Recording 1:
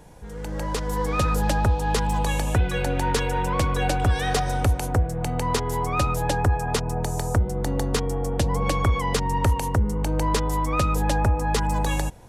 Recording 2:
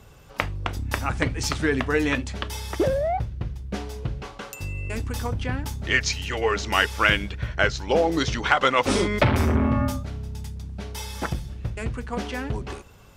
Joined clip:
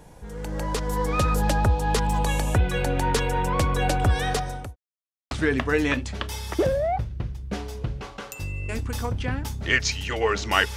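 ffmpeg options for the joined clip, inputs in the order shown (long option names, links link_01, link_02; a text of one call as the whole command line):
ffmpeg -i cue0.wav -i cue1.wav -filter_complex "[0:a]apad=whole_dur=10.76,atrim=end=10.76,asplit=2[link_01][link_02];[link_01]atrim=end=4.76,asetpts=PTS-STARTPTS,afade=type=out:start_time=4.21:duration=0.55[link_03];[link_02]atrim=start=4.76:end=5.31,asetpts=PTS-STARTPTS,volume=0[link_04];[1:a]atrim=start=1.52:end=6.97,asetpts=PTS-STARTPTS,afade=type=in:duration=0.004:curve=hsin[link_05];[link_03][link_04][link_05]concat=n=3:v=0:a=1" out.wav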